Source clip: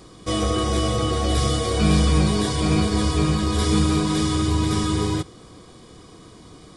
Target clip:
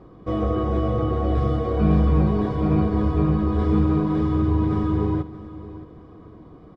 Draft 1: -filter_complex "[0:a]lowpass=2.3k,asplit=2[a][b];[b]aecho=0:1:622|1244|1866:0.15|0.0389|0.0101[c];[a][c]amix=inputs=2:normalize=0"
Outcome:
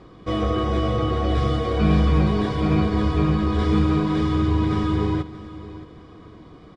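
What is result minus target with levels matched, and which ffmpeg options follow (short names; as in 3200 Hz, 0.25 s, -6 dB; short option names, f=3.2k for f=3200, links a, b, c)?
2000 Hz band +7.5 dB
-filter_complex "[0:a]lowpass=1.1k,asplit=2[a][b];[b]aecho=0:1:622|1244|1866:0.15|0.0389|0.0101[c];[a][c]amix=inputs=2:normalize=0"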